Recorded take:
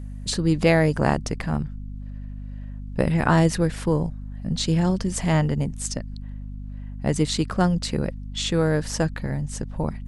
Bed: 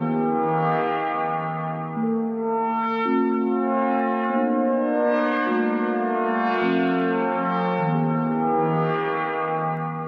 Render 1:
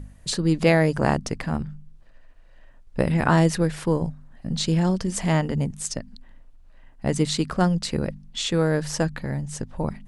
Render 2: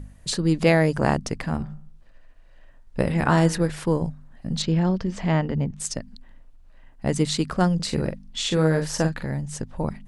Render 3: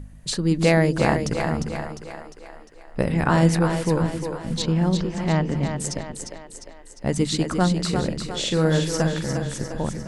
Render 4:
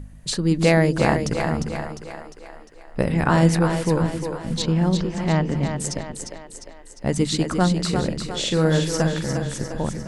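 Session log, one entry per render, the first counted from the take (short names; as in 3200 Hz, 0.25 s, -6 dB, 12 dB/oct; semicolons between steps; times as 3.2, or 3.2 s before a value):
de-hum 50 Hz, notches 5
1.54–3.7 de-hum 52.92 Hz, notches 37; 4.62–5.8 air absorption 170 m; 7.75–9.26 doubler 44 ms -7 dB
split-band echo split 330 Hz, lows 0.132 s, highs 0.352 s, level -6 dB
gain +1 dB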